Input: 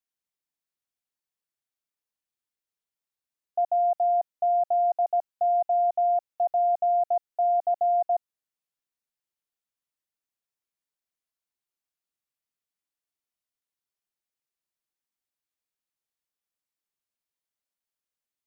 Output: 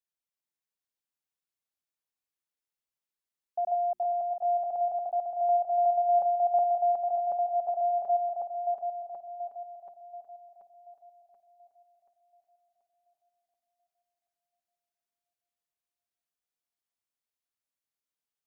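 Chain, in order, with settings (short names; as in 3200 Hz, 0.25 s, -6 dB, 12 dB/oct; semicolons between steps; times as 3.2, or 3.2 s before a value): regenerating reverse delay 0.366 s, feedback 66%, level -3.5 dB; notches 60/120/180/240/300/360 Hz; gain -5.5 dB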